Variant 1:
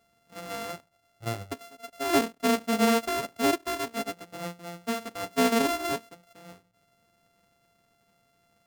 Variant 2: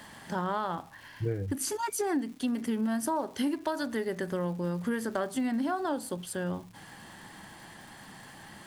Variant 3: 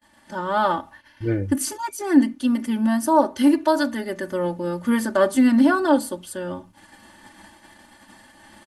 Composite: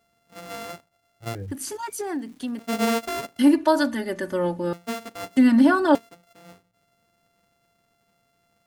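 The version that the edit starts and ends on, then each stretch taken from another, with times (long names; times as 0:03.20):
1
0:01.35–0:02.59: punch in from 2
0:03.39–0:04.73: punch in from 3
0:05.37–0:05.95: punch in from 3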